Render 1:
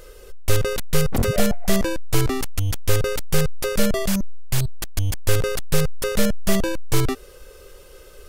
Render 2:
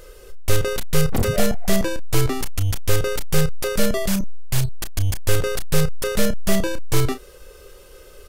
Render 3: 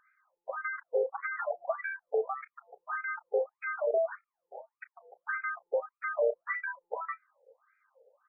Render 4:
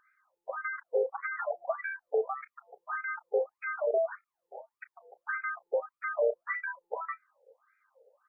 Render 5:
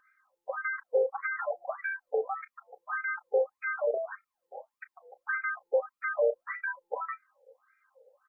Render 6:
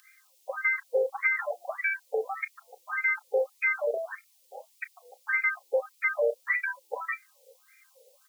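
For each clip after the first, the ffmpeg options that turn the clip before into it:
-filter_complex "[0:a]asplit=2[a][b];[b]adelay=32,volume=-10.5dB[c];[a][c]amix=inputs=2:normalize=0"
-af "afftdn=nr=13:nf=-29,highshelf=f=7.6k:g=11,afftfilt=real='re*between(b*sr/1024,580*pow(1800/580,0.5+0.5*sin(2*PI*1.7*pts/sr))/1.41,580*pow(1800/580,0.5+0.5*sin(2*PI*1.7*pts/sr))*1.41)':imag='im*between(b*sr/1024,580*pow(1800/580,0.5+0.5*sin(2*PI*1.7*pts/sr))/1.41,580*pow(1800/580,0.5+0.5*sin(2*PI*1.7*pts/sr))*1.41)':win_size=1024:overlap=0.75"
-af "equalizer=f=360:t=o:w=0.28:g=5"
-af "aecho=1:1:3.8:0.5"
-af "aexciter=amount=15.6:drive=4.4:freq=2.2k"

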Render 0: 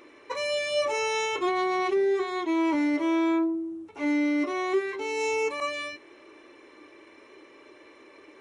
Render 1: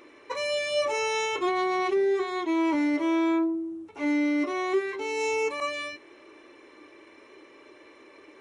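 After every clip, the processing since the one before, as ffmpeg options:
-af anull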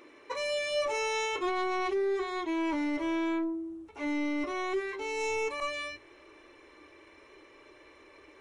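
-af "asoftclip=type=tanh:threshold=-19dB,asubboost=boost=8:cutoff=76,bandreject=f=50:t=h:w=6,bandreject=f=100:t=h:w=6,volume=-2.5dB"

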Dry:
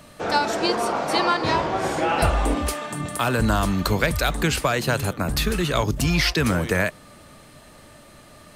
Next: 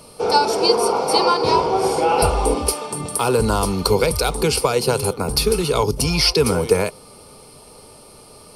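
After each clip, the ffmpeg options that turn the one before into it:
-af "superequalizer=7b=3.55:9b=2:11b=0.282:14b=2.82:16b=3.55"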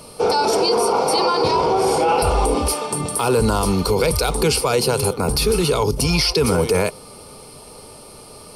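-af "alimiter=limit=-12.5dB:level=0:latency=1:release=22,volume=3.5dB"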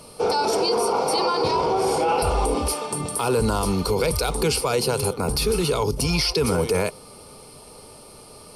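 -af "volume=-4dB" -ar 32000 -c:a ac3 -b:a 320k

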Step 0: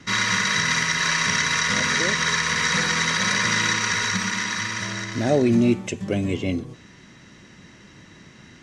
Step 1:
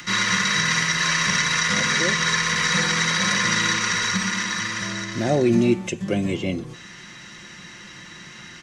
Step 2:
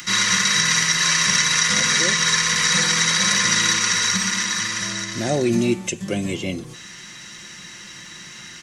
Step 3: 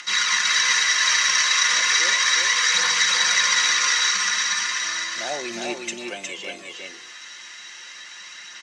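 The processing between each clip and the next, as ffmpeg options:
-filter_complex "[0:a]aecho=1:1:5.7:0.42,acrossover=split=490|890[a][b][c];[c]acompressor=mode=upward:threshold=-32dB:ratio=2.5[d];[a][b][d]amix=inputs=3:normalize=0"
-af "crystalizer=i=2.5:c=0,volume=-1.5dB"
-filter_complex "[0:a]aphaser=in_gain=1:out_gain=1:delay=4.1:decay=0.31:speed=0.35:type=triangular,highpass=710,lowpass=6.1k,asplit=2[a][b];[b]aecho=0:1:361:0.668[c];[a][c]amix=inputs=2:normalize=0,volume=-1.5dB"

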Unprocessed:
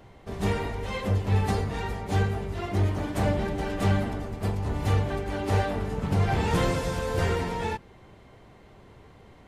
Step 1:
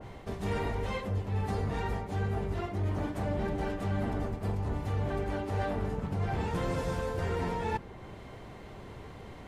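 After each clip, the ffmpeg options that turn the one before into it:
-af "areverse,acompressor=threshold=-34dB:ratio=10,areverse,adynamicequalizer=threshold=0.00141:dfrequency=2000:dqfactor=0.7:tfrequency=2000:tqfactor=0.7:attack=5:release=100:ratio=0.375:range=2.5:mode=cutabove:tftype=highshelf,volume=5.5dB"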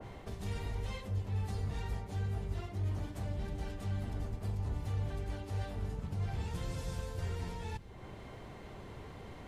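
-filter_complex "[0:a]acrossover=split=130|3000[a][b][c];[b]acompressor=threshold=-45dB:ratio=4[d];[a][d][c]amix=inputs=3:normalize=0,volume=-1.5dB"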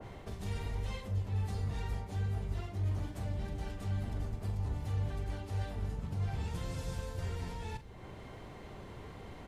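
-filter_complex "[0:a]asplit=2[a][b];[b]adelay=42,volume=-12dB[c];[a][c]amix=inputs=2:normalize=0"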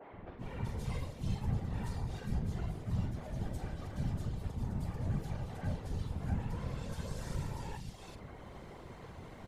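-filter_complex "[0:a]acrossover=split=250|2700[a][b][c];[a]adelay=120[d];[c]adelay=380[e];[d][b][e]amix=inputs=3:normalize=0,afftfilt=real='hypot(re,im)*cos(2*PI*random(0))':imag='hypot(re,im)*sin(2*PI*random(1))':win_size=512:overlap=0.75,volume=5.5dB"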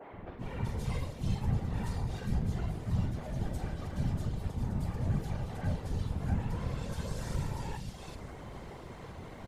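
-af "aecho=1:1:967:0.168,volume=3.5dB"

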